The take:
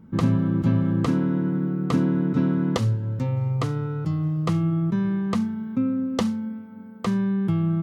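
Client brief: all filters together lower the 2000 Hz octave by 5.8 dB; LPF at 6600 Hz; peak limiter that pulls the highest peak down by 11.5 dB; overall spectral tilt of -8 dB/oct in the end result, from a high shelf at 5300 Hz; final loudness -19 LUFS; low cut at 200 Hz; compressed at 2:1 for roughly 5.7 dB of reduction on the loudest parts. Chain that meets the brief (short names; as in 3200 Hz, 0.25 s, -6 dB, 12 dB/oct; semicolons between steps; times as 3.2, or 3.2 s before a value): HPF 200 Hz; LPF 6600 Hz; bell 2000 Hz -9 dB; high shelf 5300 Hz +8.5 dB; compressor 2:1, threshold -30 dBFS; gain +15 dB; limiter -11.5 dBFS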